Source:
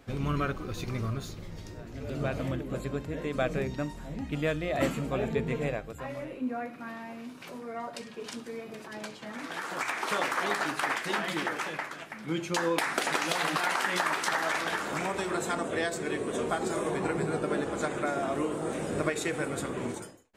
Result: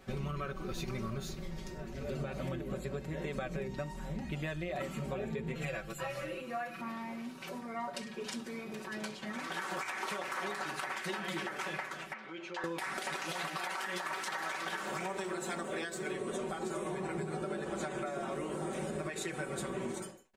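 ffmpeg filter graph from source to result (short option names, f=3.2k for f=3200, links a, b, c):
-filter_complex "[0:a]asettb=1/sr,asplit=3[a][b][c];[a]atrim=end=5.554[d];[b]atrim=start=5.55:end=6.81,asetpts=PTS-STARTPTS,afade=t=in:d=0.004:c=qsin,afade=t=out:st=1.256:d=0.004:c=qsin,tiltshelf=f=770:g=-4.5,bandreject=f=910:w=6.2,aecho=1:1:6:0.96,atrim=end_sample=55566[e];[c]atrim=start=6.806[f];[d][e]acrossfade=d=0.004:c1=hsin:c2=qsin[g];[g][f]acrossfade=d=0.004:c1=qsin:c2=hsin,asettb=1/sr,asplit=3[h][i][j];[h]atrim=end=12.134[k];[i]atrim=start=12.13:end=12.64,asetpts=PTS-STARTPTS,afade=t=in:d=0.004:c=qsin,afade=t=out:st=0.506:d=0.004:c=qsin,acompressor=threshold=-36dB:ratio=3:attack=3.2:release=140:knee=1:detection=peak,highpass=480,lowpass=3.3k[l];[j]atrim=start=12.636[m];[k][l]acrossfade=d=0.004:c1=hsin:c2=qsin[n];[n][m]acrossfade=d=0.004:c1=qsin:c2=hsin,asettb=1/sr,asplit=3[o][p][q];[o]atrim=end=13.484[r];[p]atrim=start=13.48:end=16.12,asetpts=PTS-STARTPTS,afade=t=in:d=0.004:c=qsin,afade=t=out:st=2.636:d=0.004:c=qsin,lowshelf=f=140:g=-7.5,aeval=exprs='sgn(val(0))*max(abs(val(0))-0.00126,0)':c=same[s];[q]atrim=start=16.116[t];[r][s]acrossfade=d=0.004:c1=hsin:c2=qsin[u];[u][t]acrossfade=d=0.004:c1=qsin:c2=hsin,aecho=1:1:5.3:0.81,alimiter=limit=-21dB:level=0:latency=1:release=282,acompressor=threshold=-32dB:ratio=6,volume=-2dB"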